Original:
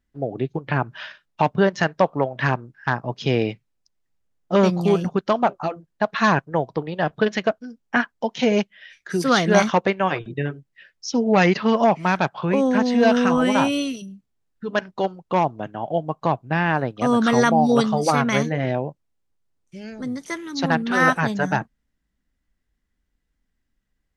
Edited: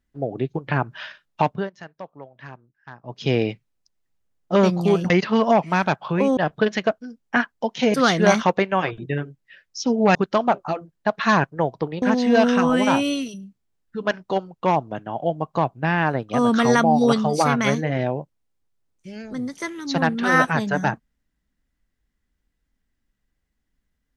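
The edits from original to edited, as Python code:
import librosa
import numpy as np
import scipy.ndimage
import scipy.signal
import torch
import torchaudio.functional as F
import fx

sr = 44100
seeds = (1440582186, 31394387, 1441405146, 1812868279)

y = fx.edit(x, sr, fx.fade_down_up(start_s=1.41, length_s=1.88, db=-19.0, fade_s=0.29),
    fx.swap(start_s=5.1, length_s=1.87, other_s=11.43, other_length_s=1.27),
    fx.cut(start_s=8.54, length_s=0.68), tone=tone)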